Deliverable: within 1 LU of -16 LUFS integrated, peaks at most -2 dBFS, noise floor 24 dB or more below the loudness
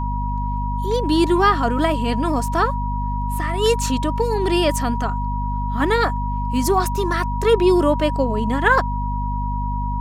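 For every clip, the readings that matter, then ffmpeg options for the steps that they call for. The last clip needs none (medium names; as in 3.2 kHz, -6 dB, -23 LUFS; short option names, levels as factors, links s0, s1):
hum 50 Hz; highest harmonic 250 Hz; hum level -21 dBFS; steady tone 960 Hz; tone level -26 dBFS; loudness -20.0 LUFS; peak level -3.5 dBFS; loudness target -16.0 LUFS
-> -af "bandreject=f=50:t=h:w=6,bandreject=f=100:t=h:w=6,bandreject=f=150:t=h:w=6,bandreject=f=200:t=h:w=6,bandreject=f=250:t=h:w=6"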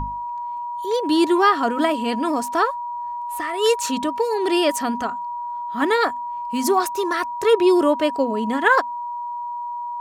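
hum not found; steady tone 960 Hz; tone level -26 dBFS
-> -af "bandreject=f=960:w=30"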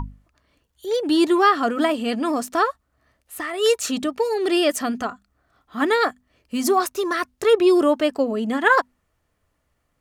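steady tone not found; loudness -21.0 LUFS; peak level -4.5 dBFS; loudness target -16.0 LUFS
-> -af "volume=1.78,alimiter=limit=0.794:level=0:latency=1"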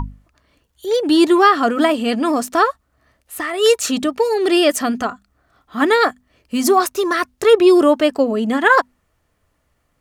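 loudness -16.0 LUFS; peak level -2.0 dBFS; noise floor -66 dBFS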